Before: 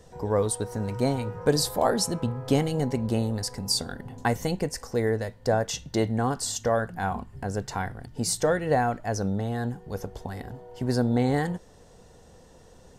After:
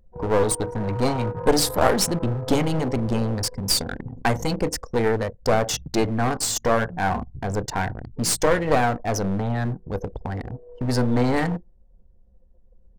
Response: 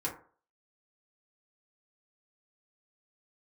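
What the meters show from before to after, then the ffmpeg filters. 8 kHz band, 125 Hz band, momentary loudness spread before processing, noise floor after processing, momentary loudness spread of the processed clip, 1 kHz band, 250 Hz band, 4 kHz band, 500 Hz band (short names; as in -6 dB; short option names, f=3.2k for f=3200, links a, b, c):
+5.0 dB, +3.0 dB, 10 LU, -54 dBFS, 9 LU, +5.0 dB, +3.5 dB, +4.5 dB, +3.5 dB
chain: -filter_complex "[0:a]asplit=2[a][b];[1:a]atrim=start_sample=2205[c];[b][c]afir=irnorm=-1:irlink=0,volume=-14.5dB[d];[a][d]amix=inputs=2:normalize=0,anlmdn=3.98,aeval=exprs='clip(val(0),-1,0.0316)':c=same,volume=6dB"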